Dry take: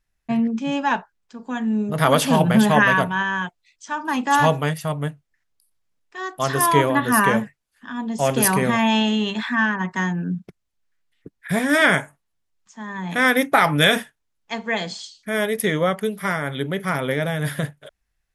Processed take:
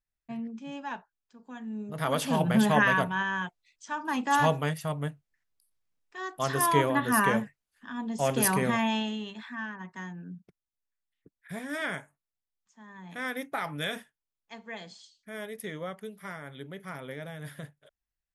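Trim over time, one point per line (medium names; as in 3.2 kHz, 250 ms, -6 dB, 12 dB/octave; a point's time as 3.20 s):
1.64 s -16 dB
2.63 s -7 dB
8.74 s -7 dB
9.35 s -17 dB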